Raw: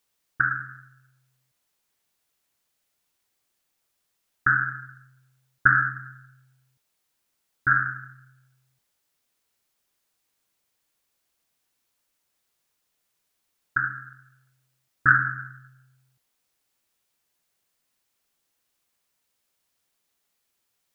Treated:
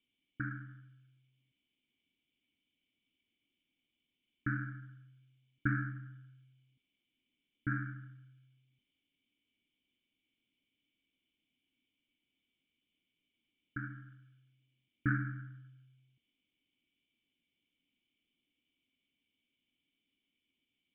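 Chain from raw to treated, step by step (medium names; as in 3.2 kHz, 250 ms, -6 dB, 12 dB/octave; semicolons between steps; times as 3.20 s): cascade formant filter i; treble shelf 2 kHz +11.5 dB; trim +8 dB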